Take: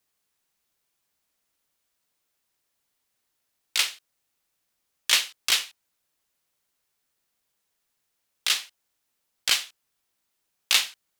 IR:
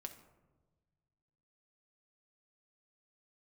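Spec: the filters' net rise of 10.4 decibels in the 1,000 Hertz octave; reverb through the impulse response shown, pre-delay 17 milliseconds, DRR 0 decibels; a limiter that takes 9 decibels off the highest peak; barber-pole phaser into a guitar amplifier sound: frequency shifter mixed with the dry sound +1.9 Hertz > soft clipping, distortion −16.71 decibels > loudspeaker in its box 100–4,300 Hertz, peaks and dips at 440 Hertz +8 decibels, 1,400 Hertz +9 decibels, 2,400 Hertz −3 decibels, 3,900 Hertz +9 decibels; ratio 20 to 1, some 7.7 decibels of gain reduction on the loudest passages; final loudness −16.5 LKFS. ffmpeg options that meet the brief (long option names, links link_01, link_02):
-filter_complex "[0:a]equalizer=frequency=1000:width_type=o:gain=8,acompressor=threshold=-22dB:ratio=20,alimiter=limit=-14.5dB:level=0:latency=1,asplit=2[link_01][link_02];[1:a]atrim=start_sample=2205,adelay=17[link_03];[link_02][link_03]afir=irnorm=-1:irlink=0,volume=4dB[link_04];[link_01][link_04]amix=inputs=2:normalize=0,asplit=2[link_05][link_06];[link_06]afreqshift=1.9[link_07];[link_05][link_07]amix=inputs=2:normalize=1,asoftclip=threshold=-21dB,highpass=100,equalizer=frequency=440:width_type=q:width=4:gain=8,equalizer=frequency=1400:width_type=q:width=4:gain=9,equalizer=frequency=2400:width_type=q:width=4:gain=-3,equalizer=frequency=3900:width_type=q:width=4:gain=9,lowpass=frequency=4300:width=0.5412,lowpass=frequency=4300:width=1.3066,volume=15dB"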